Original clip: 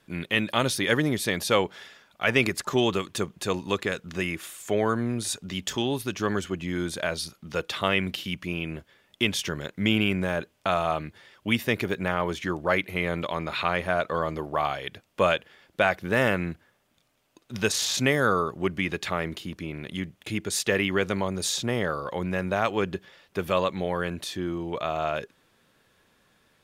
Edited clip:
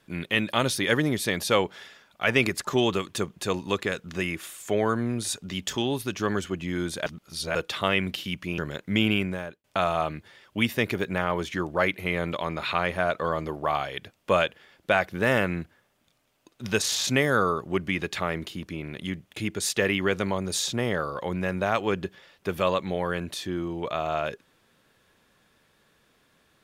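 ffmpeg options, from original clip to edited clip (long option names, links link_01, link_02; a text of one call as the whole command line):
ffmpeg -i in.wav -filter_complex "[0:a]asplit=5[link_01][link_02][link_03][link_04][link_05];[link_01]atrim=end=7.062[link_06];[link_02]atrim=start=7.058:end=7.552,asetpts=PTS-STARTPTS,areverse[link_07];[link_03]atrim=start=7.548:end=8.582[link_08];[link_04]atrim=start=9.478:end=10.54,asetpts=PTS-STARTPTS,afade=type=out:start_time=0.572:duration=0.49[link_09];[link_05]atrim=start=10.54,asetpts=PTS-STARTPTS,afade=type=in:duration=0.004:curve=hsin[link_10];[link_06][link_07]acrossfade=duration=0.004:curve1=hsin:curve2=hsin[link_11];[link_11][link_08]acrossfade=duration=0.004:curve1=hsin:curve2=hsin[link_12];[link_09][link_10]concat=n=2:v=0:a=1[link_13];[link_12][link_13]acrossfade=duration=0.004:curve1=hsin:curve2=hsin" out.wav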